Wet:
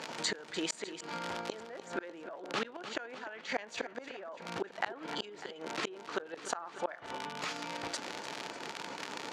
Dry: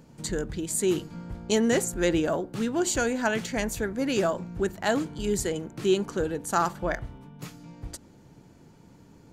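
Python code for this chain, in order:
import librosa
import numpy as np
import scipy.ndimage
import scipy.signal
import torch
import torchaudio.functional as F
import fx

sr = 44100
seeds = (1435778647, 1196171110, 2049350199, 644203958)

p1 = fx.env_lowpass_down(x, sr, base_hz=1300.0, full_db=-19.0)
p2 = fx.level_steps(p1, sr, step_db=18)
p3 = p1 + (p2 * 10.0 ** (2.0 / 20.0))
p4 = fx.dmg_crackle(p3, sr, seeds[0], per_s=80.0, level_db=-32.0)
p5 = fx.tremolo_shape(p4, sr, shape='saw_up', hz=8.5, depth_pct=45)
p6 = fx.gate_flip(p5, sr, shuts_db=-19.0, range_db=-34)
p7 = fx.bandpass_edges(p6, sr, low_hz=670.0, high_hz=4600.0)
p8 = p7 + fx.echo_feedback(p7, sr, ms=299, feedback_pct=41, wet_db=-21, dry=0)
p9 = fx.env_flatten(p8, sr, amount_pct=50)
y = p9 * 10.0 ** (4.0 / 20.0)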